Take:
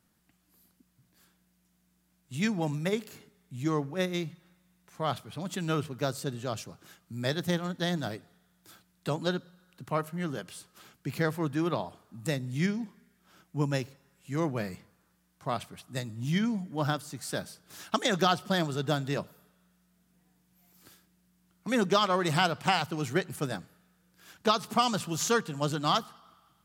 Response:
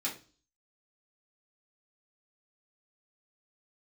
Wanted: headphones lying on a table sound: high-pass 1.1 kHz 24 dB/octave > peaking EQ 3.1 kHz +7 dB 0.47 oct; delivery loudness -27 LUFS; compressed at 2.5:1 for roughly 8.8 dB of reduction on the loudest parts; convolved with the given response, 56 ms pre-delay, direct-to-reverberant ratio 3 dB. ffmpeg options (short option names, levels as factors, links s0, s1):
-filter_complex "[0:a]acompressor=threshold=0.02:ratio=2.5,asplit=2[s0][s1];[1:a]atrim=start_sample=2205,adelay=56[s2];[s1][s2]afir=irnorm=-1:irlink=0,volume=0.473[s3];[s0][s3]amix=inputs=2:normalize=0,highpass=f=1100:w=0.5412,highpass=f=1100:w=1.3066,equalizer=f=3100:t=o:w=0.47:g=7,volume=3.98"